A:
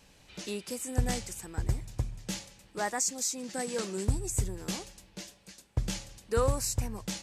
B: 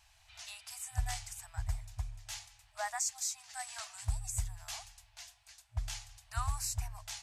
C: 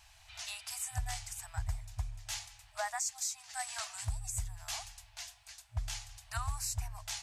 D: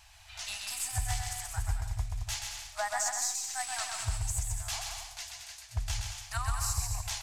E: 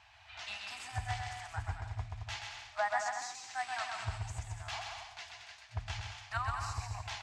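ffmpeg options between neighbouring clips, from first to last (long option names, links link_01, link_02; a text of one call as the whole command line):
ffmpeg -i in.wav -af "afftfilt=real='re*(1-between(b*sr/4096,110,620))':imag='im*(1-between(b*sr/4096,110,620))':win_size=4096:overlap=0.75,volume=-4.5dB" out.wav
ffmpeg -i in.wav -af "alimiter=level_in=6dB:limit=-24dB:level=0:latency=1:release=481,volume=-6dB,volume=5dB" out.wav
ffmpeg -i in.wav -af "aeval=exprs='0.0596*(cos(1*acos(clip(val(0)/0.0596,-1,1)))-cos(1*PI/2))+0.00133*(cos(8*acos(clip(val(0)/0.0596,-1,1)))-cos(8*PI/2))':channel_layout=same,aecho=1:1:130|221|284.7|329.3|360.5:0.631|0.398|0.251|0.158|0.1,volume=3dB" out.wav
ffmpeg -i in.wav -af "highpass=110,lowpass=2900,volume=1dB" out.wav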